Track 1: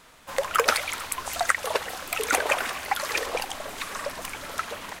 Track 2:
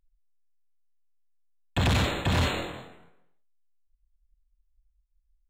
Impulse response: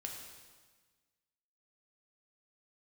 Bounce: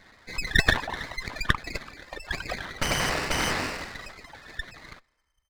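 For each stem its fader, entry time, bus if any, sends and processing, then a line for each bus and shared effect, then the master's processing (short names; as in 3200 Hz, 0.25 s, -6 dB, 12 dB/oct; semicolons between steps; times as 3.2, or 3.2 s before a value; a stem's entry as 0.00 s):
1.26 s -2 dB -> 1.82 s -9 dB, 0.00 s, send -19.5 dB, spectral gate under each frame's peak -10 dB strong
+1.0 dB, 1.05 s, send -8.5 dB, gate -58 dBFS, range -13 dB; compressor, threshold -25 dBFS, peak gain reduction 4 dB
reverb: on, RT60 1.4 s, pre-delay 3 ms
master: bell 1200 Hz +8 dB 0.93 oct; inverted band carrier 3100 Hz; running maximum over 9 samples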